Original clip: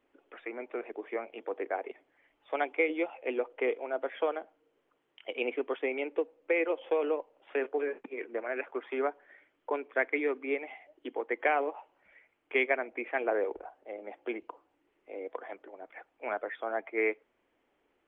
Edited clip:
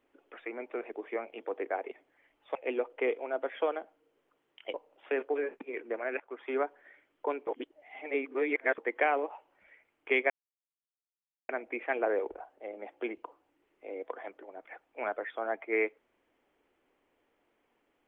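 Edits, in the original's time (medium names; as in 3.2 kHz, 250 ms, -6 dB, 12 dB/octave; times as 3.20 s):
2.55–3.15 s: delete
5.34–7.18 s: delete
8.64–8.98 s: fade in, from -16 dB
9.91–11.22 s: reverse
12.74 s: insert silence 1.19 s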